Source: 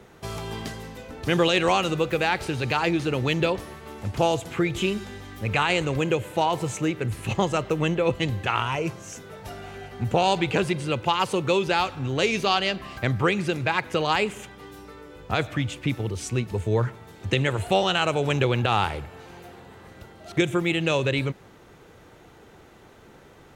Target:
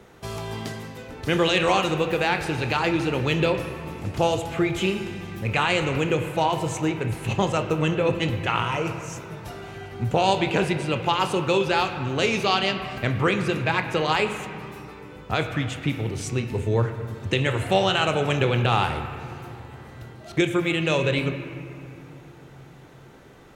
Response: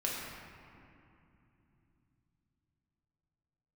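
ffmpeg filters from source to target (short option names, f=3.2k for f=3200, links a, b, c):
-filter_complex "[0:a]asplit=2[a][b];[b]highshelf=f=4.1k:g=10.5[c];[1:a]atrim=start_sample=2205,lowpass=3.2k,adelay=26[d];[c][d]afir=irnorm=-1:irlink=0,volume=-12dB[e];[a][e]amix=inputs=2:normalize=0"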